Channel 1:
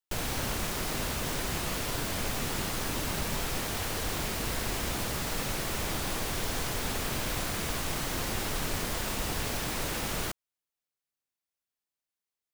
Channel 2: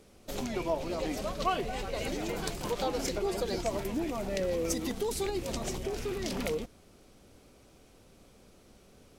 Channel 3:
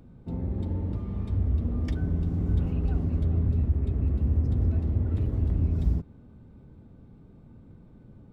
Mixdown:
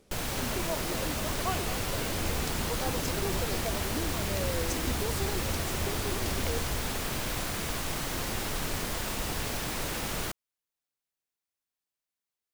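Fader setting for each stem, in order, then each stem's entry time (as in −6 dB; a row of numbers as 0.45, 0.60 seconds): −0.5, −4.0, −13.0 decibels; 0.00, 0.00, 0.85 seconds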